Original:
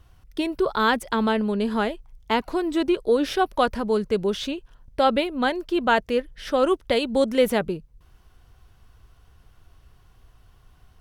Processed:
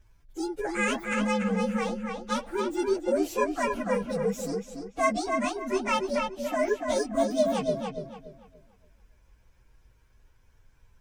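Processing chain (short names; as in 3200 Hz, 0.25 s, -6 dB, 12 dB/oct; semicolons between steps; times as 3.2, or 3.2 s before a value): inharmonic rescaling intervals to 127%; darkening echo 0.287 s, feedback 31%, low-pass 4500 Hz, level -4 dB; gain -3.5 dB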